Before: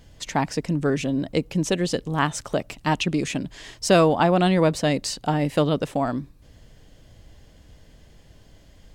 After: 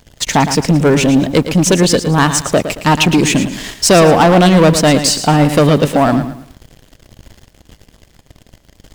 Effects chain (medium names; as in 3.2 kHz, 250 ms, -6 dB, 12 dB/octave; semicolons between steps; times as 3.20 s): treble shelf 7.7 kHz +5 dB; waveshaping leveller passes 3; bit-crushed delay 112 ms, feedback 35%, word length 7-bit, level -10 dB; trim +3.5 dB